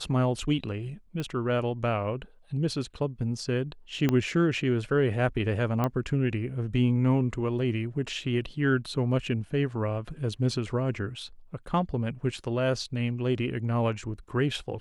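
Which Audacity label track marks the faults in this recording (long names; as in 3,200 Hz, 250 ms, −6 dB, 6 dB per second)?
1.200000	1.200000	click −21 dBFS
4.090000	4.090000	click −12 dBFS
5.840000	5.840000	click −15 dBFS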